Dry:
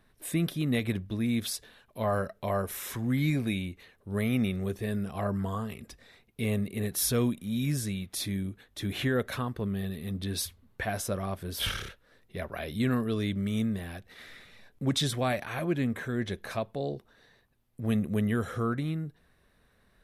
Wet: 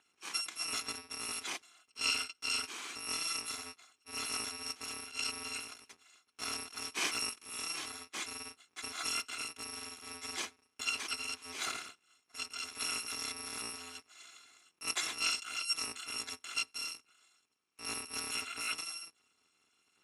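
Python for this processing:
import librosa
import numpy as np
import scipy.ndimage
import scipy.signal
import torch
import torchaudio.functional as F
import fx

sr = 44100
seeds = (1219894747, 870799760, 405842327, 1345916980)

y = fx.bit_reversed(x, sr, seeds[0], block=256)
y = fx.cabinet(y, sr, low_hz=330.0, low_slope=12, high_hz=8100.0, hz=(340.0, 590.0, 1200.0, 2300.0, 4900.0, 7500.0), db=(3, -9, 4, 4, -5, -5))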